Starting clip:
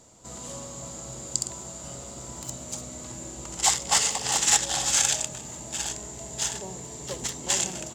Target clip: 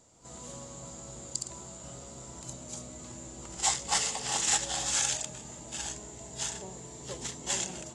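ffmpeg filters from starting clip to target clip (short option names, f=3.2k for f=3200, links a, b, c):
-af "volume=-7dB" -ar 24000 -c:a aac -b:a 32k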